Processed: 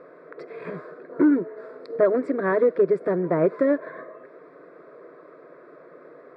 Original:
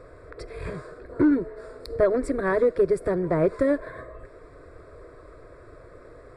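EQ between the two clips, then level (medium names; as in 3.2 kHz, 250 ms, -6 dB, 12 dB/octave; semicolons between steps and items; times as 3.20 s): brick-wall FIR high-pass 150 Hz; low-pass 2.4 kHz 12 dB/octave; +1.5 dB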